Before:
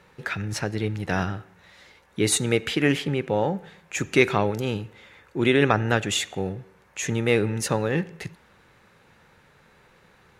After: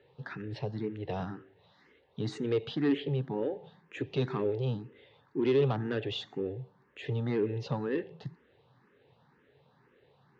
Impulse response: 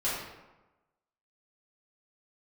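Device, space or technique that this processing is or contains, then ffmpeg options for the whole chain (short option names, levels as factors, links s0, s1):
barber-pole phaser into a guitar amplifier: -filter_complex "[0:a]asplit=2[s0][s1];[s1]afreqshift=2[s2];[s0][s2]amix=inputs=2:normalize=1,asoftclip=type=tanh:threshold=0.106,highpass=94,equalizer=f=130:t=q:w=4:g=9,equalizer=f=190:t=q:w=4:g=-3,equalizer=f=270:t=q:w=4:g=6,equalizer=f=420:t=q:w=4:g=7,equalizer=f=1400:t=q:w=4:g=-6,equalizer=f=2300:t=q:w=4:g=-8,lowpass=f=4000:w=0.5412,lowpass=f=4000:w=1.3066,volume=0.501"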